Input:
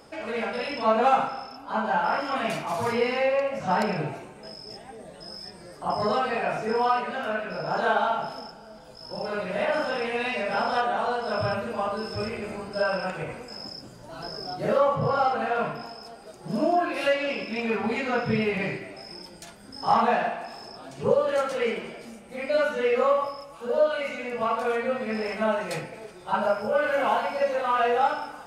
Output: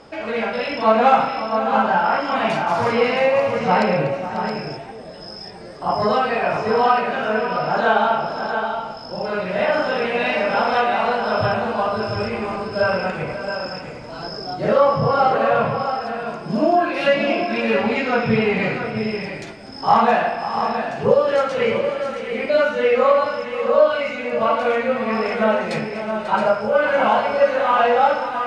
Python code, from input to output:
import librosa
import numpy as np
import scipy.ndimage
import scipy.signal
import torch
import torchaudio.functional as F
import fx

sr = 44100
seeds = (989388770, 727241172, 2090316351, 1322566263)

y = scipy.signal.sosfilt(scipy.signal.butter(2, 5200.0, 'lowpass', fs=sr, output='sos'), x)
y = fx.echo_multitap(y, sr, ms=(244, 542, 662, 671, 754), db=(-19.0, -13.0, -18.0, -8.5, -18.5))
y = y * librosa.db_to_amplitude(6.5)